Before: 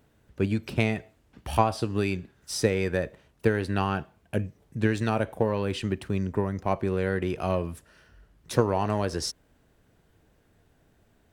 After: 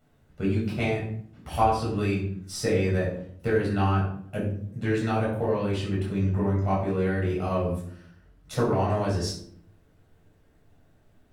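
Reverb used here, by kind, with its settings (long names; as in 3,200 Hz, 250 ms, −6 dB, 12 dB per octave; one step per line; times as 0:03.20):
rectangular room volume 840 cubic metres, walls furnished, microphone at 6.9 metres
level −9.5 dB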